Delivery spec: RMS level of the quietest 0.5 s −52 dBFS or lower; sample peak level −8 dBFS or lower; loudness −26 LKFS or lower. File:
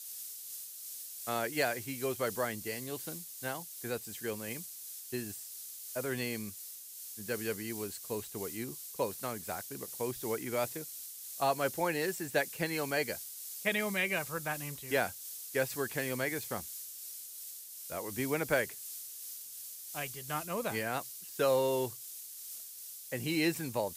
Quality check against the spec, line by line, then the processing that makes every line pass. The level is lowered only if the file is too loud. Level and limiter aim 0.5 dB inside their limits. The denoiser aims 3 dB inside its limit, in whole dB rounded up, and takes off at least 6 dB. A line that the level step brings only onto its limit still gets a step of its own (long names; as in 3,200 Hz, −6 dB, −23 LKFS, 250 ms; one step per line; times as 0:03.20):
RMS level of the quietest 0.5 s −47 dBFS: out of spec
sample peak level −15.0 dBFS: in spec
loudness −36.0 LKFS: in spec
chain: broadband denoise 8 dB, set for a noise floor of −47 dBFS